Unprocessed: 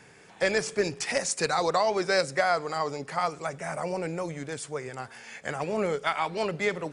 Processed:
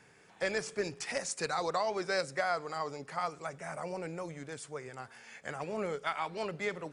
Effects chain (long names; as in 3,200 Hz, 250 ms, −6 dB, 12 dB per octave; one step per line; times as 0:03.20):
parametric band 1,300 Hz +2 dB
level −8 dB